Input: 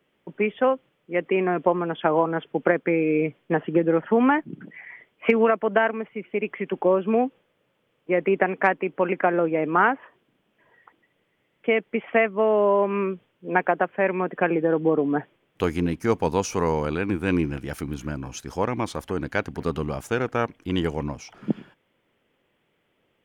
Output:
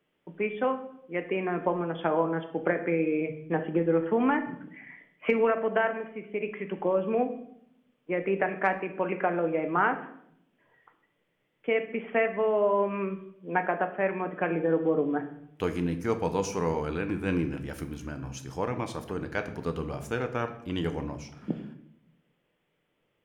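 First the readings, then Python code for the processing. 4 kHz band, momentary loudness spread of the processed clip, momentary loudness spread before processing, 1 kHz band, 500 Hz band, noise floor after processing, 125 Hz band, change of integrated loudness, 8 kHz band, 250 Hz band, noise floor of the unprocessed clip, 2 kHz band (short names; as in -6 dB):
-6.0 dB, 12 LU, 11 LU, -5.5 dB, -5.0 dB, -75 dBFS, -4.5 dB, -5.5 dB, n/a, -5.5 dB, -71 dBFS, -5.5 dB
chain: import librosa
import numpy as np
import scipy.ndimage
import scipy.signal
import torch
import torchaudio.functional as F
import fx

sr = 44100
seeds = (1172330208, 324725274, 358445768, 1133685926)

y = fx.room_shoebox(x, sr, seeds[0], volume_m3=150.0, walls='mixed', distance_m=0.44)
y = F.gain(torch.from_numpy(y), -6.5).numpy()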